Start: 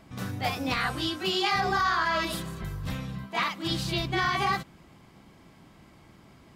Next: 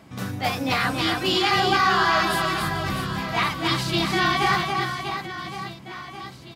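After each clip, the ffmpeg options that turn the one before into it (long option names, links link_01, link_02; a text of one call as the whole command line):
ffmpeg -i in.wav -af "highpass=85,aecho=1:1:280|644|1117|1732|2532:0.631|0.398|0.251|0.158|0.1,volume=4.5dB" out.wav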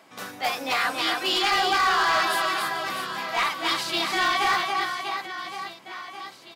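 ffmpeg -i in.wav -af "highpass=480,volume=17dB,asoftclip=hard,volume=-17dB" out.wav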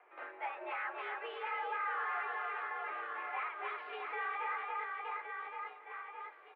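ffmpeg -i in.wav -af "acompressor=threshold=-28dB:ratio=3,aecho=1:1:1007:0.126,highpass=frequency=300:width_type=q:width=0.5412,highpass=frequency=300:width_type=q:width=1.307,lowpass=frequency=2300:width_type=q:width=0.5176,lowpass=frequency=2300:width_type=q:width=0.7071,lowpass=frequency=2300:width_type=q:width=1.932,afreqshift=85,volume=-8.5dB" out.wav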